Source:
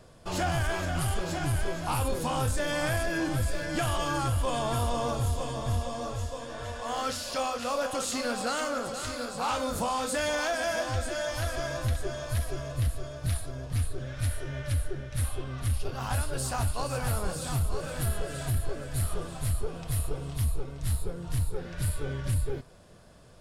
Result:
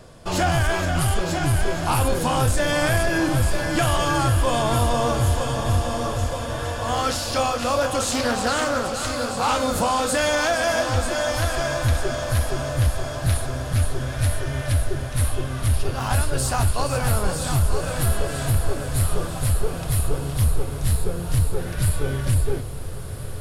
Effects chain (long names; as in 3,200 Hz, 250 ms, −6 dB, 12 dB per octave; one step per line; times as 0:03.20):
feedback delay with all-pass diffusion 1,437 ms, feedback 62%, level −11.5 dB
0:08.04–0:08.96: highs frequency-modulated by the lows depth 0.23 ms
level +8 dB